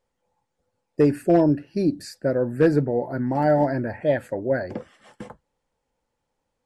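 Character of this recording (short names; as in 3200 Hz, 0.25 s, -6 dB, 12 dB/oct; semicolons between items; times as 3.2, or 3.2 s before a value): noise floor -79 dBFS; spectral tilt -5.5 dB/oct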